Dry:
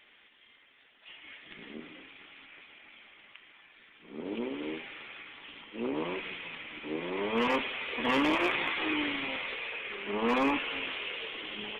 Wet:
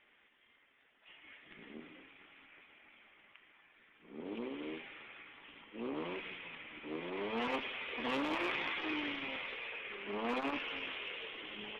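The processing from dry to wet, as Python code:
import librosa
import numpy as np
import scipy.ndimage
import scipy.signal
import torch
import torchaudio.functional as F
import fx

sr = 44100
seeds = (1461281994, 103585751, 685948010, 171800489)

y = fx.env_lowpass(x, sr, base_hz=2300.0, full_db=-24.5)
y = fx.transformer_sat(y, sr, knee_hz=640.0)
y = y * 10.0 ** (-5.5 / 20.0)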